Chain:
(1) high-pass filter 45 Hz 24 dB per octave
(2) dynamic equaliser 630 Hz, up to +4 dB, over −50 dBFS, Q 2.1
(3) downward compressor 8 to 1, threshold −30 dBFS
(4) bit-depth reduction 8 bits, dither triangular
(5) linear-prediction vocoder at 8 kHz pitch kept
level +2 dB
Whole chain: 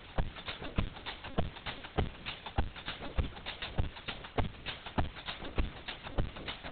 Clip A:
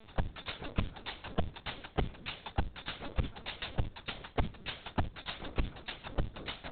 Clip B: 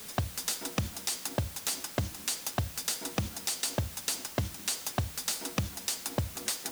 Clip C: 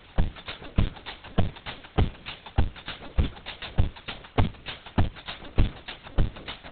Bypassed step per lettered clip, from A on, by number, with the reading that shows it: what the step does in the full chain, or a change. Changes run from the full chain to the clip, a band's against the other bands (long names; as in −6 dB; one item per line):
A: 4, distortion level −11 dB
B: 5, 4 kHz band +4.0 dB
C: 3, average gain reduction 4.0 dB